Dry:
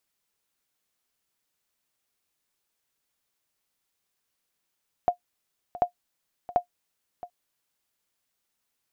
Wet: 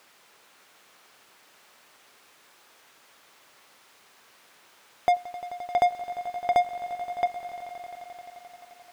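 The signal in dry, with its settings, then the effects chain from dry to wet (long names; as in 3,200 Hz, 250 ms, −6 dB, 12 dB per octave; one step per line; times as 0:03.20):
ping with an echo 710 Hz, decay 0.10 s, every 0.74 s, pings 3, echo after 0.67 s, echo −16.5 dB −12 dBFS
mid-hump overdrive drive 39 dB, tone 1,400 Hz, clips at −12 dBFS
on a send: echo that builds up and dies away 87 ms, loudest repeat 5, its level −16.5 dB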